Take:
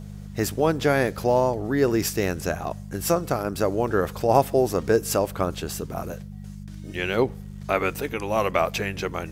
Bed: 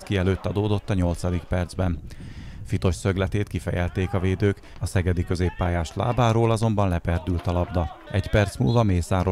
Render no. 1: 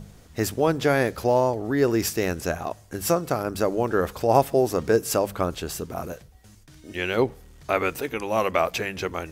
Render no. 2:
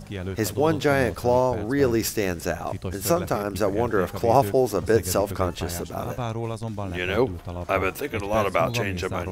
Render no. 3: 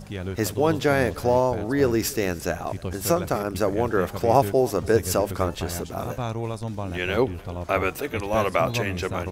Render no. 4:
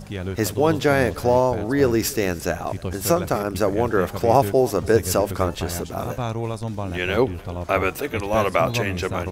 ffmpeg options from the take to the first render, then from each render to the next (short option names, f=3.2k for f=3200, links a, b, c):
-af "bandreject=f=50:t=h:w=4,bandreject=f=100:t=h:w=4,bandreject=f=150:t=h:w=4,bandreject=f=200:t=h:w=4"
-filter_complex "[1:a]volume=-9.5dB[a];[0:a][a]amix=inputs=2:normalize=0"
-af "aecho=1:1:297:0.0668"
-af "volume=2.5dB,alimiter=limit=-3dB:level=0:latency=1"